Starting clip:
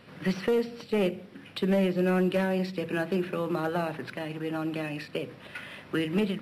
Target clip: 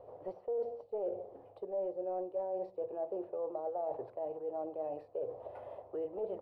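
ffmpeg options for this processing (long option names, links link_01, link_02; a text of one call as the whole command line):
ffmpeg -i in.wav -af "firequalizer=gain_entry='entry(100,0);entry(170,-22);entry(450,10);entry(710,13);entry(1500,-22);entry(2400,-26)':delay=0.05:min_phase=1,areverse,acompressor=threshold=-33dB:ratio=4,areverse,volume=-4dB" out.wav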